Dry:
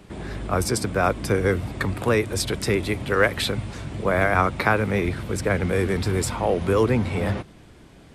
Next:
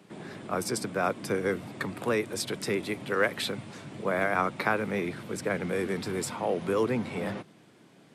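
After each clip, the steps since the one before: HPF 140 Hz 24 dB/oct; gain -6.5 dB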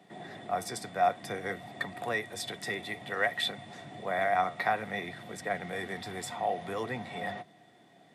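dynamic EQ 330 Hz, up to -6 dB, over -40 dBFS, Q 0.75; flange 0.55 Hz, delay 3.9 ms, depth 8.5 ms, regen -78%; small resonant body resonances 720/1900/3500 Hz, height 17 dB, ringing for 45 ms; gain -1.5 dB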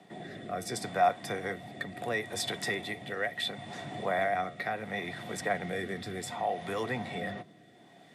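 in parallel at -0.5 dB: compressor, threshold -37 dBFS, peak gain reduction 15 dB; on the sum: rotary speaker horn 0.7 Hz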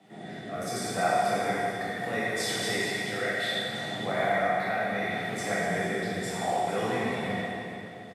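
echo 0.436 s -13.5 dB; plate-style reverb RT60 2.5 s, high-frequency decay 0.9×, DRR -9.5 dB; gain -5 dB

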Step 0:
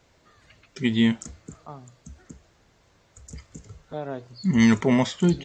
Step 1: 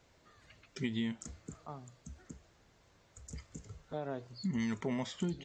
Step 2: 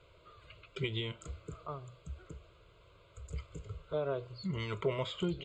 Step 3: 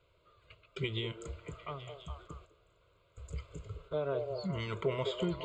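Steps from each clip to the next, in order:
compressor 6:1, threshold -27 dBFS, peak gain reduction 13.5 dB; gain -5.5 dB
air absorption 62 m; fixed phaser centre 1200 Hz, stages 8; gain +8 dB
delay with a stepping band-pass 0.207 s, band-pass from 540 Hz, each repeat 0.7 oct, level -3 dB; gate -53 dBFS, range -8 dB

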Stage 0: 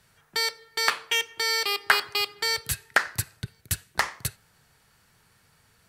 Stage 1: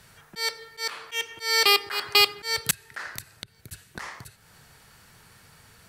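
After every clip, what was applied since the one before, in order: auto swell 0.277 s; gain +8.5 dB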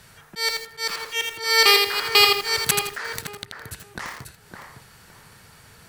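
in parallel at -11 dB: soft clip -17 dBFS, distortion -8 dB; on the sum: tape echo 0.562 s, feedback 30%, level -4 dB, low-pass 1200 Hz; lo-fi delay 82 ms, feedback 35%, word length 6-bit, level -4 dB; gain +1.5 dB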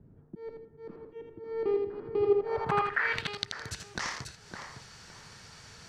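low-pass sweep 300 Hz -> 5900 Hz, 2.2–3.49; gain -2.5 dB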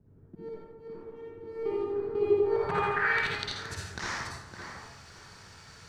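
in parallel at -7.5 dB: crossover distortion -52 dBFS; on the sum: reverb RT60 1.0 s, pre-delay 43 ms, DRR -5.5 dB; gain -7.5 dB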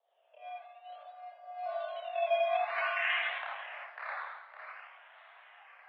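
decimation with a swept rate 13×, swing 60% 0.52 Hz; chorus voices 4, 0.37 Hz, delay 29 ms, depth 2.2 ms; mistuned SSB +270 Hz 360–2800 Hz

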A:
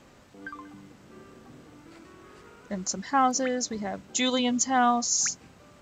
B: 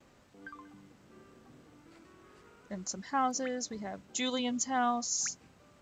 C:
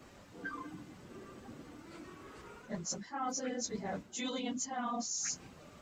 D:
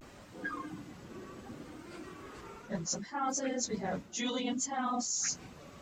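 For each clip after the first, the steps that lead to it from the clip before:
gate with hold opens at -48 dBFS; gain -7.5 dB
phase scrambler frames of 50 ms; reverse; compressor 8:1, threshold -41 dBFS, peak gain reduction 17.5 dB; reverse; gain +6 dB
vibrato 0.67 Hz 69 cents; gain +3.5 dB

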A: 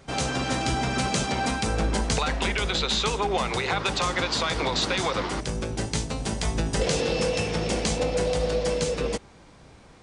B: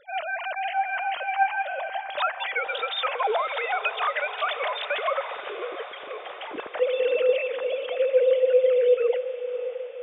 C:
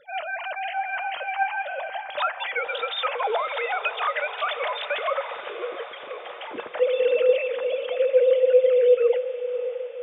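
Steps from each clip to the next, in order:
sine-wave speech; diffused feedback echo 0.588 s, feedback 63%, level -12 dB
on a send at -11 dB: tilt shelf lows -4.5 dB, about 1500 Hz + reverb RT60 0.15 s, pre-delay 3 ms

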